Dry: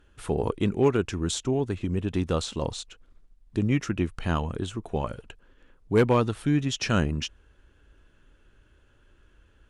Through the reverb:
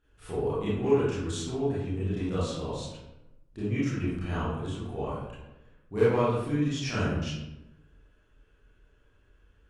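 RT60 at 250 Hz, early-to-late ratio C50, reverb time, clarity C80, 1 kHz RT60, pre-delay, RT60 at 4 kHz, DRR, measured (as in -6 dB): 1.1 s, -2.0 dB, 0.95 s, 2.5 dB, 0.90 s, 25 ms, 0.55 s, -11.5 dB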